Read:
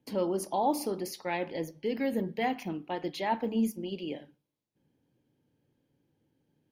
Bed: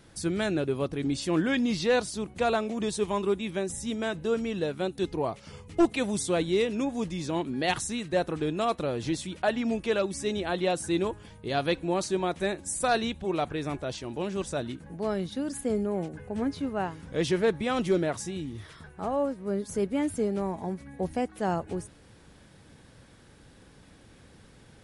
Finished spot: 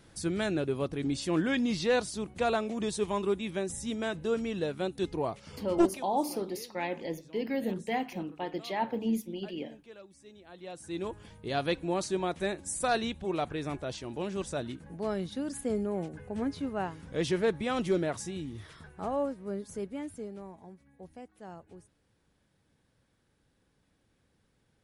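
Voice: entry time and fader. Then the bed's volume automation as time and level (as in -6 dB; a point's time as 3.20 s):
5.50 s, -1.5 dB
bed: 5.85 s -2.5 dB
6.07 s -23.5 dB
10.43 s -23.5 dB
11.20 s -3 dB
19.19 s -3 dB
20.81 s -18 dB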